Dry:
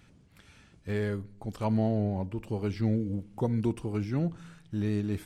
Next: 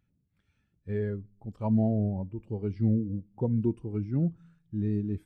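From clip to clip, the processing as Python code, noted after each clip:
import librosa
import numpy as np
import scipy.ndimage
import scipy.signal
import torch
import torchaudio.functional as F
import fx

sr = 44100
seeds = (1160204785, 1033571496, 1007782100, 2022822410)

y = fx.spectral_expand(x, sr, expansion=1.5)
y = F.gain(torch.from_numpy(y), 1.5).numpy()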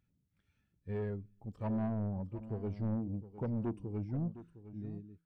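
y = fx.fade_out_tail(x, sr, length_s=1.27)
y = 10.0 ** (-26.5 / 20.0) * np.tanh(y / 10.0 ** (-26.5 / 20.0))
y = y + 10.0 ** (-14.0 / 20.0) * np.pad(y, (int(710 * sr / 1000.0), 0))[:len(y)]
y = F.gain(torch.from_numpy(y), -4.0).numpy()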